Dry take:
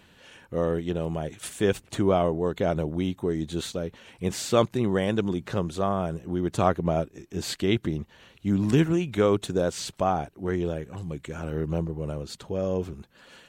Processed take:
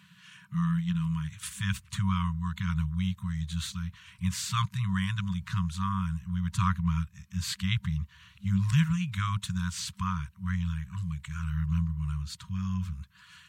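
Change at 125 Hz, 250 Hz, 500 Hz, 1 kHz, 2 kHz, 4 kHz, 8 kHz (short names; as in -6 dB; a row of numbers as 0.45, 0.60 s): +2.0 dB, -4.5 dB, under -40 dB, -6.0 dB, -1.5 dB, -1.5 dB, -1.5 dB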